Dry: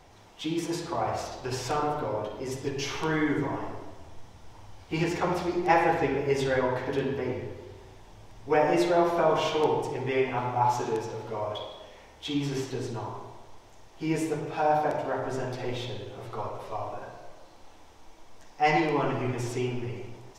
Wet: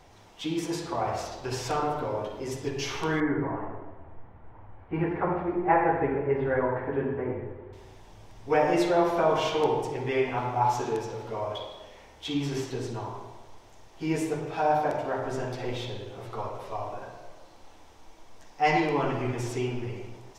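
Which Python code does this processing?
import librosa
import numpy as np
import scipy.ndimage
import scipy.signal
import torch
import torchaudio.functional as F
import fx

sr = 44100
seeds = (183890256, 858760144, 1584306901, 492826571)

y = fx.lowpass(x, sr, hz=1900.0, slope=24, at=(3.2, 7.73))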